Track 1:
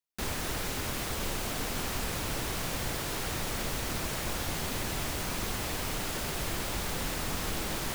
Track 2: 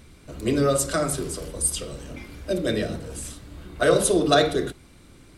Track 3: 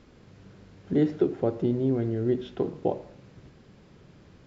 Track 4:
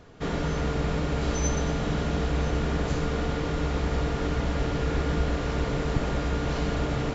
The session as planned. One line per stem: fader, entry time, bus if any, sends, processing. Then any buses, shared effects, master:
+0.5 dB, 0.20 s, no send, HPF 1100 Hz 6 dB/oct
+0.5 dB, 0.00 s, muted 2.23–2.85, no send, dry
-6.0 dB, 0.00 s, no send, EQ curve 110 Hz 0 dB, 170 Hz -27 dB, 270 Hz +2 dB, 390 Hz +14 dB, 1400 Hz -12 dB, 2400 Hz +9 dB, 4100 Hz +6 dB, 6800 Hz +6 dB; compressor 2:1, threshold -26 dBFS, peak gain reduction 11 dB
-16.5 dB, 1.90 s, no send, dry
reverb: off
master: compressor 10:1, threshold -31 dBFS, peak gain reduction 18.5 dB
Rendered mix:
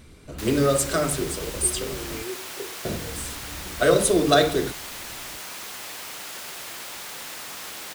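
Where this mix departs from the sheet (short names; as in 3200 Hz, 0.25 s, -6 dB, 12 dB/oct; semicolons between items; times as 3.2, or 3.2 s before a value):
stem 3 -6.0 dB -> -12.5 dB; stem 4: muted; master: missing compressor 10:1, threshold -31 dBFS, peak gain reduction 18.5 dB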